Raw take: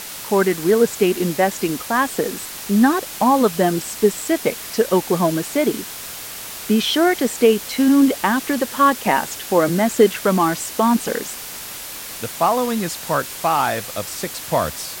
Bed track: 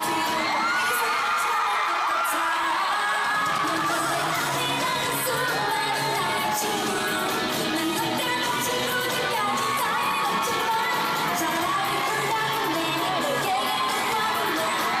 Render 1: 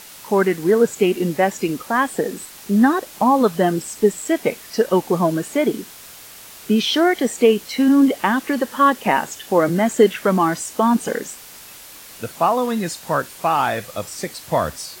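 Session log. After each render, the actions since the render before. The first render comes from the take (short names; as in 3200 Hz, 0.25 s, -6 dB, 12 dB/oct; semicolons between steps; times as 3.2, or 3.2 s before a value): noise print and reduce 8 dB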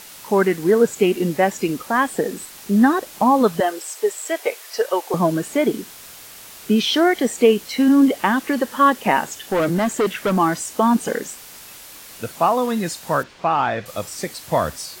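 3.6–5.14 HPF 440 Hz 24 dB/oct; 9.21–10.37 hard clip -15 dBFS; 13.23–13.86 air absorption 160 m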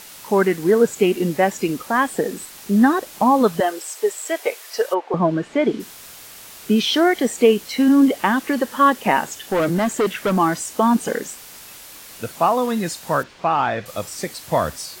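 4.93–5.79 LPF 1900 Hz -> 4500 Hz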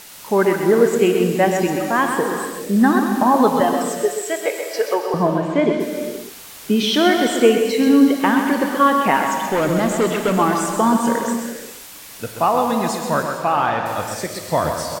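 echo 0.129 s -7.5 dB; non-linear reverb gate 0.49 s flat, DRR 5 dB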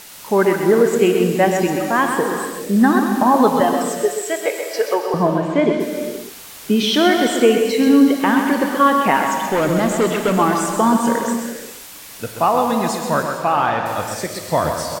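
gain +1 dB; limiter -3 dBFS, peak gain reduction 2.5 dB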